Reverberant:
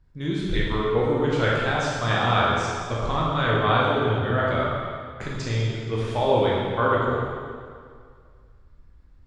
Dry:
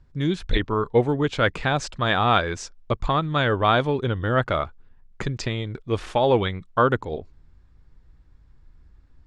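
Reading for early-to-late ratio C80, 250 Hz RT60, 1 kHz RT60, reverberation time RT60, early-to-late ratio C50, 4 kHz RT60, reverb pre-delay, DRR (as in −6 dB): 0.5 dB, 2.1 s, 2.1 s, 2.1 s, −1.5 dB, 1.8 s, 13 ms, −6.0 dB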